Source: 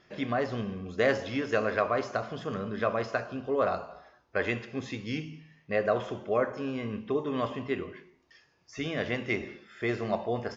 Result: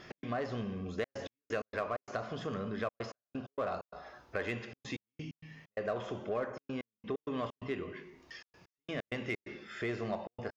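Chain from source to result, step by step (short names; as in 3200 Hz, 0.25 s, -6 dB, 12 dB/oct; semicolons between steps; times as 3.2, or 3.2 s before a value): in parallel at -4 dB: soft clip -30.5 dBFS, distortion -7 dB; on the sum: compressor 2:1, threshold -51 dBFS, peak gain reduction 17 dB; step gate "x.xxxxxxx.x..x.x" 130 bpm -60 dB; gain +5.5 dB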